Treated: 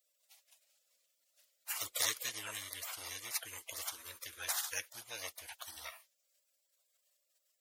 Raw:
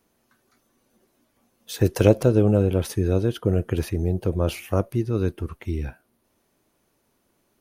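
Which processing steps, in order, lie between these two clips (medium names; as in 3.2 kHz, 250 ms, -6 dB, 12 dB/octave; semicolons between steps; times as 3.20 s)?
elliptic high-pass 810 Hz, stop band 50 dB; spectral gate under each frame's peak -20 dB weak; trim +13.5 dB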